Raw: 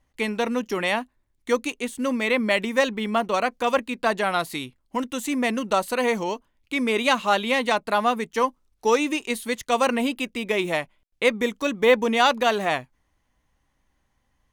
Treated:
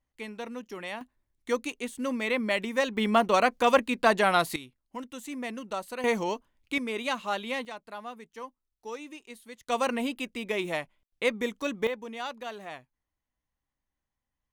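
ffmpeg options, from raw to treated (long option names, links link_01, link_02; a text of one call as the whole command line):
ffmpeg -i in.wav -af "asetnsamples=nb_out_samples=441:pad=0,asendcmd='1.01 volume volume -6dB;2.97 volume volume 0.5dB;4.56 volume volume -12dB;6.04 volume volume -3dB;6.78 volume volume -10dB;7.65 volume volume -19dB;9.68 volume volume -6.5dB;11.87 volume volume -17.5dB',volume=-13.5dB" out.wav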